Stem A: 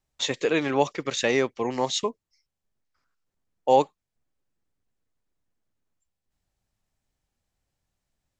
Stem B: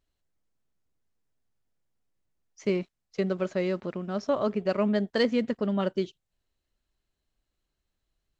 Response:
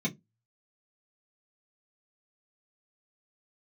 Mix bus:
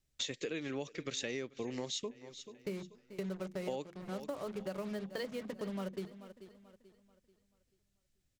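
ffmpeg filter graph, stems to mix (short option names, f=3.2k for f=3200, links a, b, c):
-filter_complex "[0:a]equalizer=f=900:t=o:w=1.2:g=-13,volume=0.5dB,asplit=2[a][b];[b]volume=-22.5dB[c];[1:a]acrusher=bits=5:mix=0:aa=0.5,volume=-7.5dB,asplit=3[d][e][f];[e]volume=-19dB[g];[f]volume=-18.5dB[h];[2:a]atrim=start_sample=2205[i];[g][i]afir=irnorm=-1:irlink=0[j];[c][h]amix=inputs=2:normalize=0,aecho=0:1:436|872|1308|1744|2180:1|0.37|0.137|0.0507|0.0187[k];[a][d][j][k]amix=inputs=4:normalize=0,acompressor=threshold=-36dB:ratio=8"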